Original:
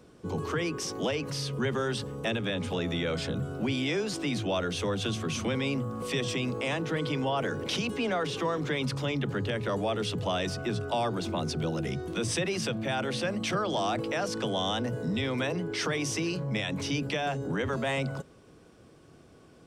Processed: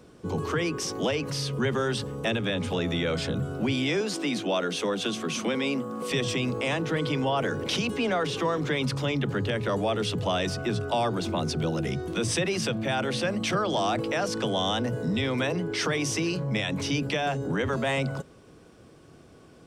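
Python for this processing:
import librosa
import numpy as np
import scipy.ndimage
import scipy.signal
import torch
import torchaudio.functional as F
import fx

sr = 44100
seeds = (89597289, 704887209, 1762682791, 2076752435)

y = fx.highpass(x, sr, hz=180.0, slope=24, at=(4.01, 6.11))
y = y * 10.0 ** (3.0 / 20.0)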